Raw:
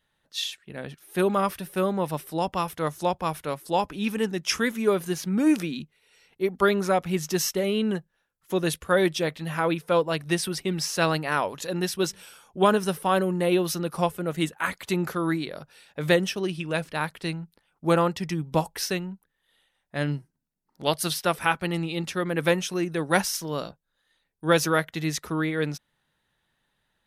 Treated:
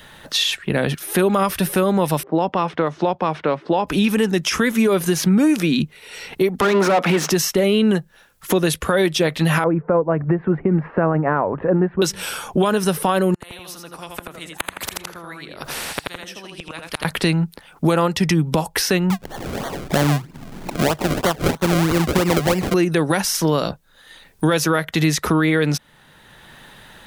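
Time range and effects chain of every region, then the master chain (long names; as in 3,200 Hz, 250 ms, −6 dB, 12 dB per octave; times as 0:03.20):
0:02.23–0:03.87: high-pass filter 200 Hz + head-to-tape spacing loss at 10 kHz 31 dB + low-pass that shuts in the quiet parts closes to 780 Hz, open at −24.5 dBFS
0:06.61–0:07.30: mid-hump overdrive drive 28 dB, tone 1,200 Hz, clips at −9.5 dBFS + Chebyshev high-pass filter 200 Hz, order 3
0:09.64–0:12.02: Bessel low-pass filter 940 Hz, order 8 + shaped tremolo triangle 9.2 Hz, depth 45%
0:13.34–0:17.05: gate with flip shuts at −24 dBFS, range −42 dB + repeating echo 82 ms, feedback 17%, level −6 dB + every bin compressed towards the loudest bin 4 to 1
0:19.10–0:22.74: low-pass filter 4,200 Hz + upward compression, threshold −32 dBFS + sample-and-hold swept by an LFO 34× 3.1 Hz
whole clip: downward compressor 5 to 1, threshold −32 dBFS; boost into a limiter +26.5 dB; multiband upward and downward compressor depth 40%; level −7.5 dB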